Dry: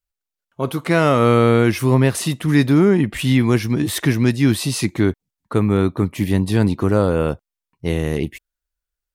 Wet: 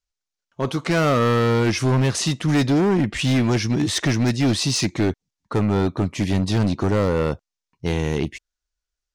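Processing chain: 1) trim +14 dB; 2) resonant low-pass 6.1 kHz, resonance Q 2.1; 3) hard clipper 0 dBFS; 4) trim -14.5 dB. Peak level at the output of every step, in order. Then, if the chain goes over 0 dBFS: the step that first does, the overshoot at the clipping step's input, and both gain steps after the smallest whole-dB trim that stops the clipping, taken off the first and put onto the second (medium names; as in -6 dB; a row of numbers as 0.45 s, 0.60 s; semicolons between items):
+10.0 dBFS, +10.0 dBFS, 0.0 dBFS, -14.5 dBFS; step 1, 10.0 dB; step 1 +4 dB, step 4 -4.5 dB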